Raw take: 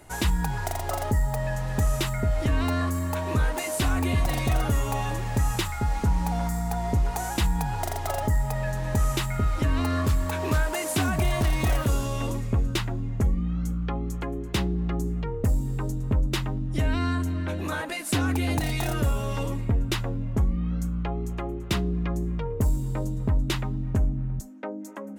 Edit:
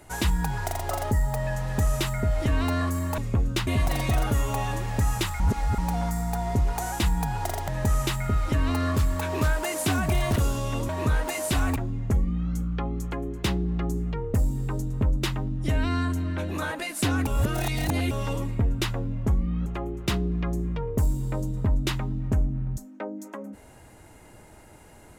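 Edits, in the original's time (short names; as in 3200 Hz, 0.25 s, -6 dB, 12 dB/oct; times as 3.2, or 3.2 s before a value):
3.18–4.05 swap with 12.37–12.86
5.78–6.16 reverse
8.06–8.78 cut
11.46–11.84 cut
18.37–19.21 reverse
20.76–21.29 cut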